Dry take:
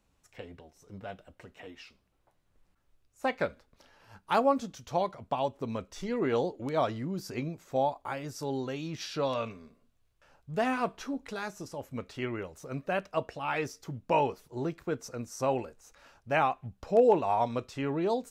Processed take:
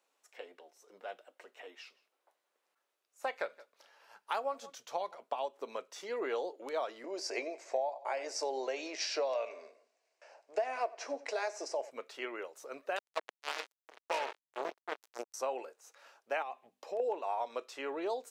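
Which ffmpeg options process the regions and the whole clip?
-filter_complex "[0:a]asettb=1/sr,asplit=3[s0][s1][s2];[s0]atrim=end=1.774[s3];[s1]atrim=start=1.77:end=5.18,asetpts=PTS-STARTPTS,afade=t=in:d=0.004:c=qsin,afade=t=out:st=3.406:d=0.004:c=qsin,asubboost=boost=7.5:cutoff=120,aecho=1:1:170:0.0668,atrim=end_sample=150381[s4];[s2]atrim=start=5.176[s5];[s3][s4]acrossfade=d=0.004:c1=hsin:c2=qsin[s6];[s6][s5]acrossfade=d=0.004:c1=qsin:c2=hsin,asettb=1/sr,asplit=3[s7][s8][s9];[s7]atrim=end=7.044[s10];[s8]atrim=start=7.04:end=11.91,asetpts=PTS-STARTPTS,afade=t=in:d=0.004:c=qsin,afade=t=out:st=4.866:d=0.004:c=qsin,acontrast=49,highpass=f=290:w=0.5412,highpass=f=290:w=1.3066,equalizer=f=650:t=q:w=4:g=9,equalizer=f=1300:t=q:w=4:g=-8,equalizer=f=2200:t=q:w=4:g=4,equalizer=f=3400:t=q:w=4:g=-9,equalizer=f=5200:t=q:w=4:g=4,lowpass=f=8200:w=0.5412,lowpass=f=8200:w=1.3066,aecho=1:1:89|178|267:0.0891|0.0357|0.0143,atrim=end_sample=214767[s11];[s9]atrim=start=11.906[s12];[s10][s11]acrossfade=d=0.004:c1=hsin:c2=qsin[s13];[s13][s12]acrossfade=d=0.004:c1=qsin:c2=hsin,asettb=1/sr,asplit=3[s14][s15][s16];[s14]atrim=end=12.964[s17];[s15]atrim=start=12.96:end=15.34,asetpts=PTS-STARTPTS,afade=t=in:d=0.004:c=qsin,afade=t=out:st=2.376:d=0.004:c=qsin,asubboost=boost=8.5:cutoff=160,aecho=1:1:108|146|390|799:0.316|0.2|0.178|0.15,atrim=end_sample=104958,acrusher=bits=3:mix=0:aa=0.5[s18];[s16]atrim=start=15.336[s19];[s17][s18]acrossfade=d=0.004:c1=hsin:c2=qsin[s20];[s20][s19]acrossfade=d=0.004:c1=qsin:c2=hsin,asettb=1/sr,asplit=3[s21][s22][s23];[s21]atrim=end=16.424[s24];[s22]atrim=start=16.42:end=17,asetpts=PTS-STARTPTS,afade=t=in:d=0.004:c=qsin,afade=t=out:st=0.576:d=0.004:c=qsin,bandreject=f=50:t=h:w=6,bandreject=f=100:t=h:w=6,bandreject=f=150:t=h:w=6,bandreject=f=200:t=h:w=6,bandreject=f=250:t=h:w=6,bandreject=f=300:t=h:w=6,acompressor=threshold=0.0316:ratio=5:attack=3.2:release=140:knee=1:detection=peak,equalizer=f=1400:w=5:g=-11[s25];[s23]atrim=start=16.996[s26];[s24][s25]acrossfade=d=0.004:c1=hsin:c2=qsin[s27];[s27][s26]acrossfade=d=0.004:c1=qsin:c2=hsin,highpass=f=410:w=0.5412,highpass=f=410:w=1.3066,acompressor=threshold=0.0316:ratio=6,volume=0.841"

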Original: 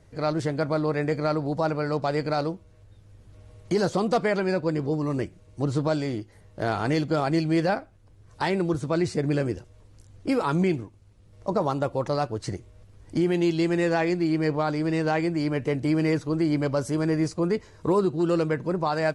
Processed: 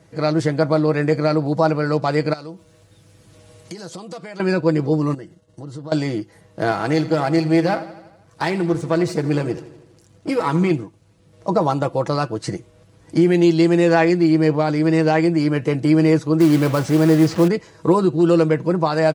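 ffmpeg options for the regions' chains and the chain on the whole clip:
-filter_complex "[0:a]asettb=1/sr,asplit=3[s0][s1][s2];[s0]atrim=end=2.334[s3];[s1]atrim=start=2.33:end=4.4,asetpts=PTS-STARTPTS,afade=t=in:d=0.004:c=qsin,afade=t=out:st=2.066:d=0.004:c=qsin,highshelf=f=3000:g=9,acompressor=threshold=0.00891:ratio=4:attack=3.2:release=140:knee=1:detection=peak[s4];[s2]atrim=start=4.396[s5];[s3][s4]acrossfade=d=0.004:c1=hsin:c2=qsin[s6];[s6][s5]acrossfade=d=0.004:c1=qsin:c2=hsin,asettb=1/sr,asplit=3[s7][s8][s9];[s7]atrim=end=5.144[s10];[s8]atrim=start=5.14:end=5.92,asetpts=PTS-STARTPTS,afade=t=in:d=0.004:c=qsin,afade=t=out:st=0.776:d=0.004:c=qsin,agate=range=0.0224:threshold=0.00447:ratio=3:release=100:detection=peak,acompressor=threshold=0.0126:ratio=6:attack=3.2:release=140:knee=1:detection=peak,asuperstop=centerf=2400:order=8:qfactor=5.4[s11];[s9]atrim=start=5.916[s12];[s10][s11]acrossfade=d=0.004:c1=hsin:c2=qsin[s13];[s13][s12]acrossfade=d=0.004:c1=qsin:c2=hsin,asettb=1/sr,asplit=3[s14][s15][s16];[s14]atrim=end=6.714[s17];[s15]atrim=start=6.71:end=10.71,asetpts=PTS-STARTPTS,afade=t=in:d=0.004:c=qsin,afade=t=out:st=3.996:d=0.004:c=qsin,aeval=exprs='if(lt(val(0),0),0.447*val(0),val(0))':c=same,aecho=1:1:82|164|246|328|410|492:0.168|0.101|0.0604|0.0363|0.0218|0.0131,atrim=end_sample=176400[s18];[s16]atrim=start=10.706[s19];[s17][s18]acrossfade=d=0.004:c1=hsin:c2=qsin[s20];[s20][s19]acrossfade=d=0.004:c1=qsin:c2=hsin,asettb=1/sr,asplit=3[s21][s22][s23];[s21]atrim=end=16.404[s24];[s22]atrim=start=16.4:end=17.48,asetpts=PTS-STARTPTS,afade=t=in:d=0.004:c=qsin,afade=t=out:st=1.076:d=0.004:c=qsin,aeval=exprs='val(0)+0.5*0.0316*sgn(val(0))':c=same,lowpass=4300,acrusher=bits=5:mode=log:mix=0:aa=0.000001[s25];[s23]atrim=start=17.476[s26];[s24][s25]acrossfade=d=0.004:c1=hsin:c2=qsin[s27];[s27][s26]acrossfade=d=0.004:c1=qsin:c2=hsin,highpass=110,aecho=1:1:6.1:0.46,volume=2"

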